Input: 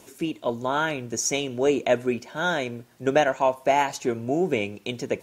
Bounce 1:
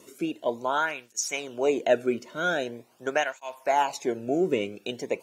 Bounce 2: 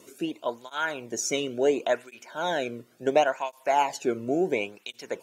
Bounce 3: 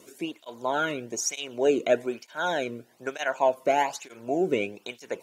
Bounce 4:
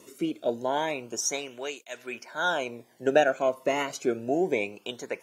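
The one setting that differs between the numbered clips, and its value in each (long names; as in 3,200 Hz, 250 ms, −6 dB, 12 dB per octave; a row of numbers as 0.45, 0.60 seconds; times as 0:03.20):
through-zero flanger with one copy inverted, nulls at: 0.44, 0.71, 1.1, 0.27 Hertz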